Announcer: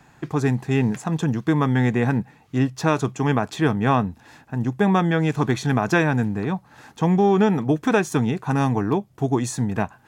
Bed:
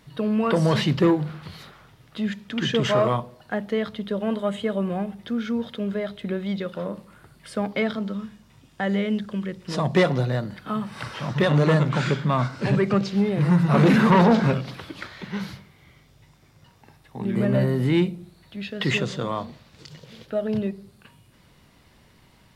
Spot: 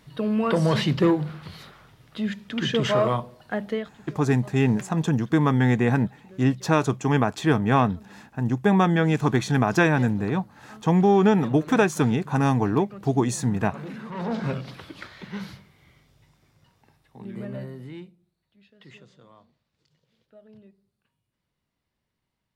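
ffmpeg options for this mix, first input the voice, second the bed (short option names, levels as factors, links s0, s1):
-filter_complex "[0:a]adelay=3850,volume=0.944[s0];[1:a]volume=5.96,afade=t=out:st=3.71:d=0.2:silence=0.105925,afade=t=in:st=14.13:d=0.52:silence=0.149624,afade=t=out:st=15.89:d=2.27:silence=0.0841395[s1];[s0][s1]amix=inputs=2:normalize=0"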